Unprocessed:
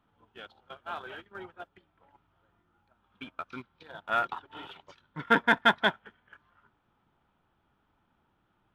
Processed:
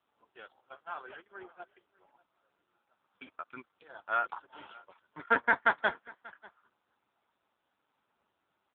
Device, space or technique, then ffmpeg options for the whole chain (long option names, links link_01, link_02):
satellite phone: -af "highpass=330,lowpass=3100,aecho=1:1:589:0.0668,volume=-1.5dB" -ar 8000 -c:a libopencore_amrnb -b:a 6700